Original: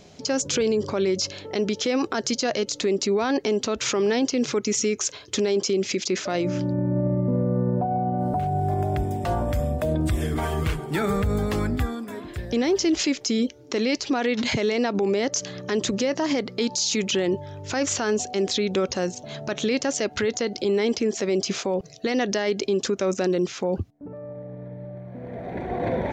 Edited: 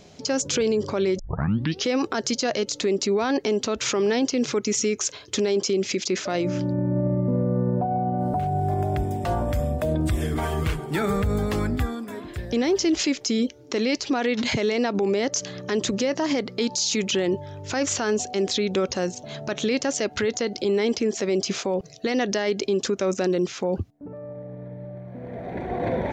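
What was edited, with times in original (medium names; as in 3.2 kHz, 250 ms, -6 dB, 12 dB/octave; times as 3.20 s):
1.19 s: tape start 0.67 s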